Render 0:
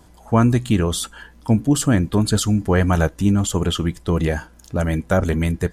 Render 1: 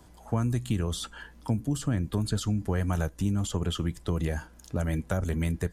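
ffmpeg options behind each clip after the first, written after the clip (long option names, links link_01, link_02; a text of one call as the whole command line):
ffmpeg -i in.wav -filter_complex "[0:a]acrossover=split=140|6300[link_01][link_02][link_03];[link_01]acompressor=threshold=-23dB:ratio=4[link_04];[link_02]acompressor=threshold=-26dB:ratio=4[link_05];[link_03]acompressor=threshold=-40dB:ratio=4[link_06];[link_04][link_05][link_06]amix=inputs=3:normalize=0,volume=-4.5dB" out.wav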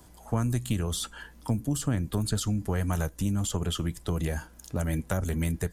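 ffmpeg -i in.wav -af "aeval=exprs='0.178*(cos(1*acos(clip(val(0)/0.178,-1,1)))-cos(1*PI/2))+0.0251*(cos(2*acos(clip(val(0)/0.178,-1,1)))-cos(2*PI/2))':channel_layout=same,highshelf=frequency=8100:gain=10" out.wav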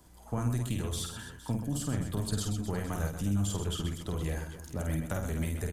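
ffmpeg -i in.wav -af "aecho=1:1:50|130|258|462.8|790.5:0.631|0.398|0.251|0.158|0.1,volume=-6dB" out.wav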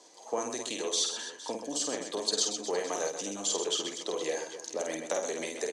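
ffmpeg -i in.wav -af "highpass=frequency=360:width=0.5412,highpass=frequency=360:width=1.3066,equalizer=frequency=490:width_type=q:width=4:gain=5,equalizer=frequency=1400:width_type=q:width=4:gain=-10,equalizer=frequency=4200:width_type=q:width=4:gain=7,equalizer=frequency=6100:width_type=q:width=4:gain=10,lowpass=frequency=7800:width=0.5412,lowpass=frequency=7800:width=1.3066,volume=6dB" out.wav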